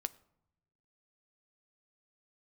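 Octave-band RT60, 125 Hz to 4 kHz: 1.3, 1.1, 0.80, 0.80, 0.55, 0.40 s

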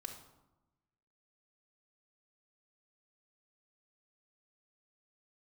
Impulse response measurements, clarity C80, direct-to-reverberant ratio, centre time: 10.0 dB, 0.5 dB, 23 ms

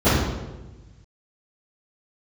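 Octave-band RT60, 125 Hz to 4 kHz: 1.9, 1.5, 1.3, 1.0, 0.95, 0.90 s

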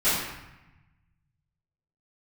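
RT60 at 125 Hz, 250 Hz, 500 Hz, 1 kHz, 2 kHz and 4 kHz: 2.2, 1.4, 0.85, 1.1, 1.1, 0.75 s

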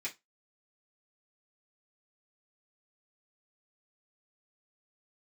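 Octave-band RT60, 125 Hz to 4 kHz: 0.20, 0.20, 0.20, 0.20, 0.20, 0.20 s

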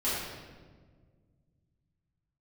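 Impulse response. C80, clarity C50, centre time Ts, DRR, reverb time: 1.0 dB, -1.5 dB, 96 ms, -12.5 dB, 1.6 s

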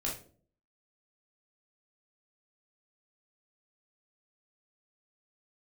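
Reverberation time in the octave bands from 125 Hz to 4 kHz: 0.65, 0.70, 0.55, 0.40, 0.30, 0.30 s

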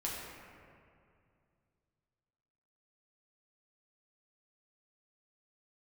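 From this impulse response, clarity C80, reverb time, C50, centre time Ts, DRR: 1.0 dB, 2.4 s, -0.5 dB, 0.118 s, -6.0 dB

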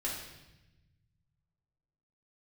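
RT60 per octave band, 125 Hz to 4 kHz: 2.5, 1.7, 1.0, 0.90, 1.0, 1.0 s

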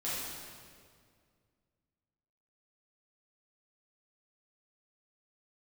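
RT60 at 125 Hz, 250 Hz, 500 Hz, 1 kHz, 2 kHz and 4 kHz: 2.7, 2.5, 2.2, 1.9, 1.7, 1.6 s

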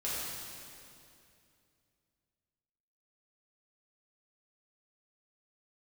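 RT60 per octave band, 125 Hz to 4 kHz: 3.2, 3.0, 2.7, 2.4, 2.4, 2.3 s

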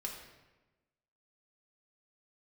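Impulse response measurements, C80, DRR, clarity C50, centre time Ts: 6.5 dB, -1.5 dB, 4.5 dB, 39 ms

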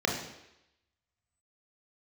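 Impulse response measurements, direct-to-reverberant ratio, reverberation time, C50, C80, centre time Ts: -1.0 dB, 0.85 s, 4.5 dB, 7.5 dB, 39 ms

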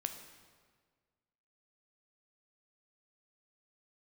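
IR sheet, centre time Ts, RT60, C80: 23 ms, 1.7 s, 9.5 dB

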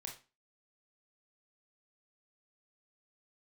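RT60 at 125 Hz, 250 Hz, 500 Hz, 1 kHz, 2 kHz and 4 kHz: 0.35, 0.40, 0.30, 0.30, 0.30, 0.30 s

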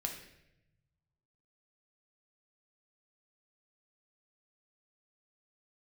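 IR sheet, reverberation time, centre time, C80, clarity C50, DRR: 0.85 s, 26 ms, 9.5 dB, 6.5 dB, 2.0 dB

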